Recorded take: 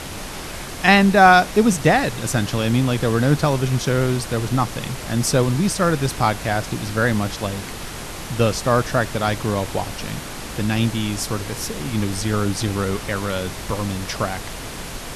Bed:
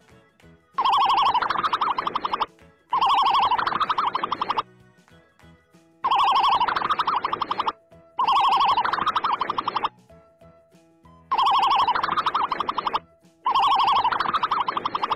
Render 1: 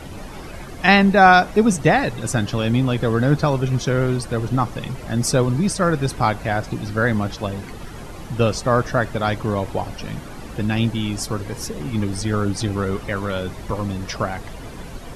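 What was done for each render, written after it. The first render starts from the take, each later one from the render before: noise reduction 12 dB, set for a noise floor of -32 dBFS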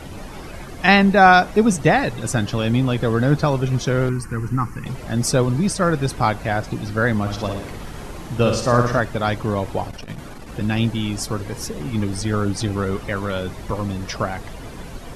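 4.09–4.86 s: static phaser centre 1.5 kHz, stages 4; 7.21–9.00 s: flutter echo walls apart 9.9 m, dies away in 0.63 s; 9.86–10.61 s: transformer saturation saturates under 140 Hz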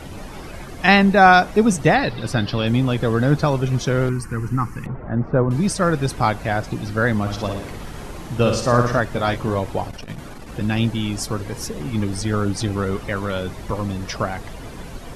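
1.95–2.67 s: resonant high shelf 5.6 kHz -6.5 dB, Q 3; 4.86–5.51 s: low-pass 1.6 kHz 24 dB/octave; 9.09–9.59 s: doubling 22 ms -7 dB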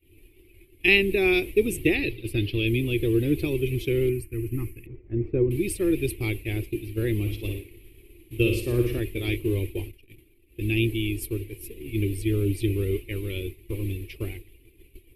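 expander -21 dBFS; FFT filter 100 Hz 0 dB, 170 Hz -17 dB, 240 Hz -13 dB, 350 Hz +7 dB, 650 Hz -27 dB, 1.5 kHz -29 dB, 2.4 kHz +5 dB, 6.1 kHz -21 dB, 12 kHz +10 dB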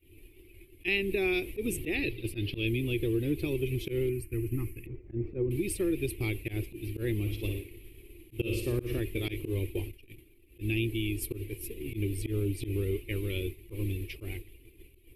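slow attack 124 ms; compression 2.5:1, threshold -29 dBFS, peak gain reduction 10 dB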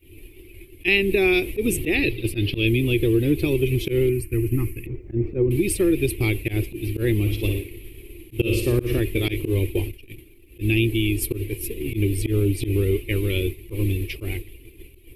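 trim +10 dB

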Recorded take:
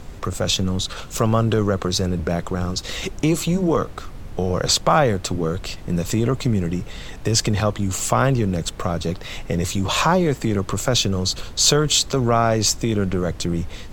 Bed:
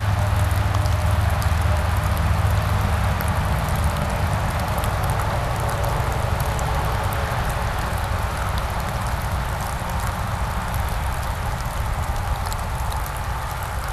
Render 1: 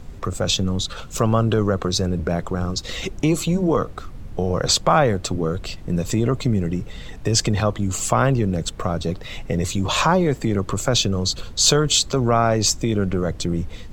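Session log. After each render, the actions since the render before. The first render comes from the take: noise reduction 6 dB, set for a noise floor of -36 dBFS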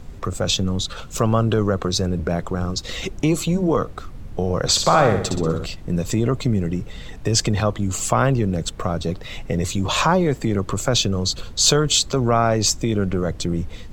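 4.70–5.66 s: flutter echo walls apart 10.7 m, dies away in 0.61 s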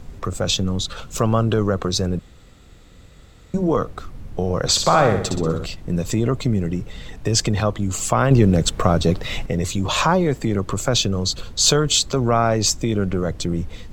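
2.19–3.54 s: room tone; 8.31–9.46 s: gain +6.5 dB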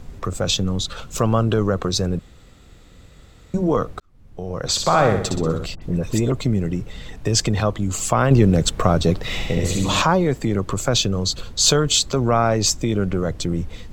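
4.00–5.08 s: fade in; 5.75–6.32 s: phase dispersion highs, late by 69 ms, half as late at 1.7 kHz; 9.20–10.02 s: flutter echo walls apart 11.5 m, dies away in 1.1 s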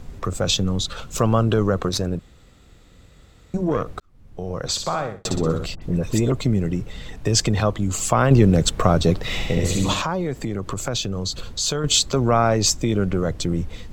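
1.89–3.86 s: valve stage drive 11 dB, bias 0.6; 4.49–5.25 s: fade out; 9.93–11.84 s: compression 2:1, threshold -25 dBFS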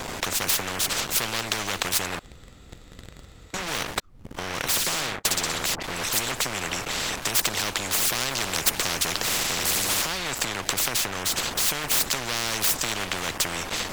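waveshaping leveller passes 3; spectrum-flattening compressor 10:1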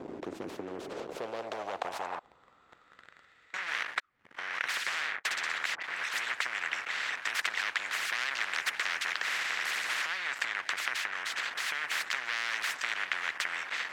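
in parallel at -7 dB: crossover distortion -31 dBFS; on the sum: band-pass sweep 330 Hz -> 1.8 kHz, 0.58–3.37 s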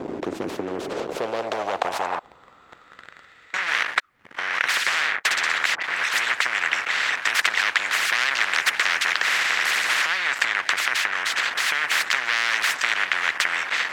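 trim +11 dB; peak limiter -3 dBFS, peak gain reduction 2.5 dB

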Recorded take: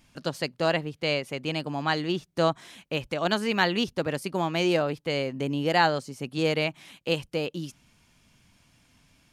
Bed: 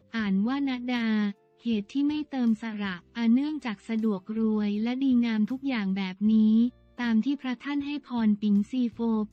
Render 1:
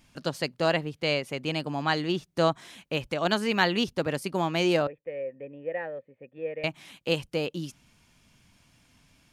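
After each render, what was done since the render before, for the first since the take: 4.87–6.64 s: cascade formant filter e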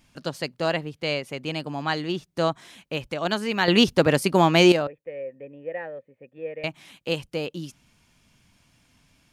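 3.68–4.72 s: gain +9.5 dB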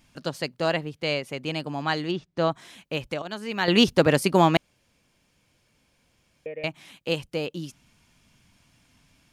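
2.11–2.51 s: distance through air 120 m; 3.22–3.85 s: fade in, from -13.5 dB; 4.57–6.46 s: room tone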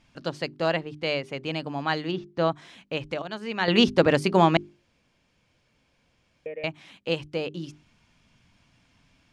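Bessel low-pass 4.7 kHz, order 2; hum notches 50/100/150/200/250/300/350/400 Hz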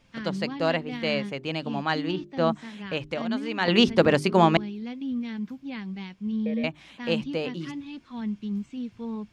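add bed -7 dB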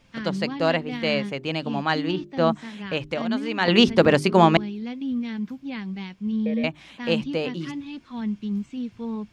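trim +3 dB; peak limiter -3 dBFS, peak gain reduction 1 dB

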